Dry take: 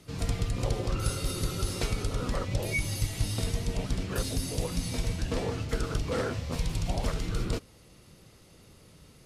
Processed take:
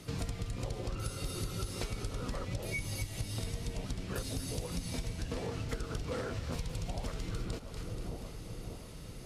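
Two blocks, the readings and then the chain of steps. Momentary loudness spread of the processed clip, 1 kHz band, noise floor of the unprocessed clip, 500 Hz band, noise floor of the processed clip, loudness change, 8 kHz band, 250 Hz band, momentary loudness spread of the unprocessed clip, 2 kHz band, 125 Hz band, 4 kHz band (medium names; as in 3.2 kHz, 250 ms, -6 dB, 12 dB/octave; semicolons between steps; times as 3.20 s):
6 LU, -6.5 dB, -56 dBFS, -6.5 dB, -47 dBFS, -7.5 dB, -6.5 dB, -6.0 dB, 2 LU, -6.5 dB, -6.5 dB, -6.5 dB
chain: on a send: two-band feedback delay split 1 kHz, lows 585 ms, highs 240 ms, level -14 dB; on the sum: compression 6:1, threshold -39 dBFS, peak gain reduction 16 dB; trim +4.5 dB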